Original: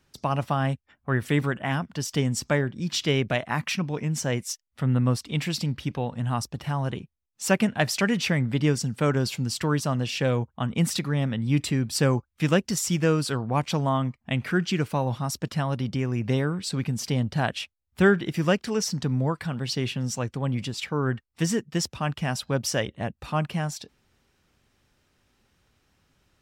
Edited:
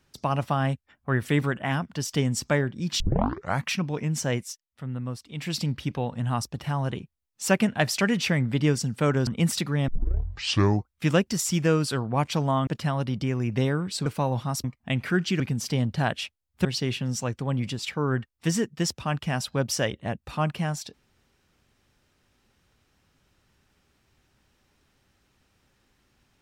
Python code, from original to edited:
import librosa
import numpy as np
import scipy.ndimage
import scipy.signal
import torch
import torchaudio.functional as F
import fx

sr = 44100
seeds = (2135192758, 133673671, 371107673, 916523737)

y = fx.edit(x, sr, fx.tape_start(start_s=3.0, length_s=0.64),
    fx.fade_down_up(start_s=4.36, length_s=1.2, db=-10.0, fade_s=0.21),
    fx.cut(start_s=9.27, length_s=1.38),
    fx.tape_start(start_s=11.26, length_s=1.04),
    fx.swap(start_s=14.05, length_s=0.76, other_s=15.39, other_length_s=1.39),
    fx.cut(start_s=18.03, length_s=1.57), tone=tone)